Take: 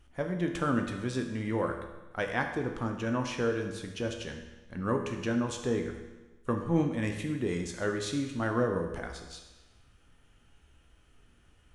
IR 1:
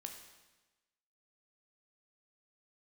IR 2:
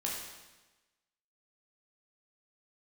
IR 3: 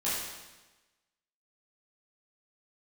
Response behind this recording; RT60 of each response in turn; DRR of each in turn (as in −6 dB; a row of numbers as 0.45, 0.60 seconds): 1; 1.2, 1.2, 1.2 seconds; 3.5, −3.5, −10.5 decibels